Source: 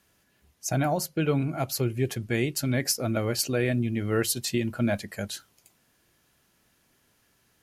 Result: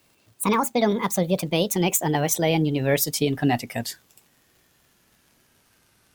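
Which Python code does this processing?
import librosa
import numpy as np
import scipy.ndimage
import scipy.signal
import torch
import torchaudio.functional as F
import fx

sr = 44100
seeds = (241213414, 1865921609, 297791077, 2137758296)

y = fx.speed_glide(x, sr, from_pct=160, to_pct=88)
y = fx.dmg_crackle(y, sr, seeds[0], per_s=110.0, level_db=-52.0)
y = F.gain(torch.from_numpy(y), 4.5).numpy()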